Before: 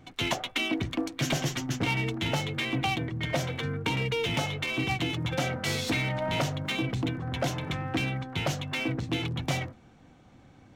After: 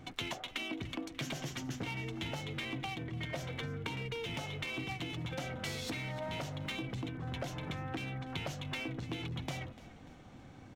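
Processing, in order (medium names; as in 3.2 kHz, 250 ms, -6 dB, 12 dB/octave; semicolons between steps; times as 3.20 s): compression 10:1, threshold -38 dBFS, peak gain reduction 15 dB; on a send: frequency-shifting echo 294 ms, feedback 43%, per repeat -57 Hz, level -17.5 dB; on the sum: trim +1.5 dB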